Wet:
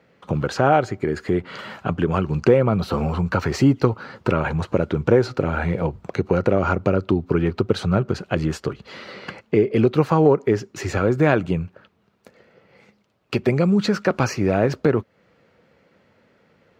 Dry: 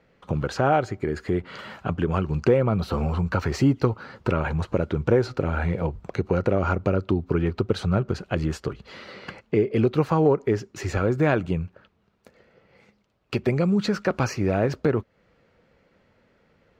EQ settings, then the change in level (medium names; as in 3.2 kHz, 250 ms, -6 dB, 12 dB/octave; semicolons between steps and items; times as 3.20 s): high-pass 97 Hz; +4.0 dB